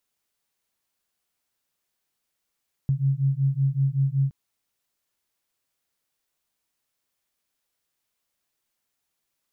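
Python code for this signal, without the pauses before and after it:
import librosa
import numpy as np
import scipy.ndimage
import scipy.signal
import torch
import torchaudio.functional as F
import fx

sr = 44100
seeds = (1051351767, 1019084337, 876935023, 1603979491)

y = fx.two_tone_beats(sr, length_s=1.42, hz=134.0, beat_hz=5.3, level_db=-23.0)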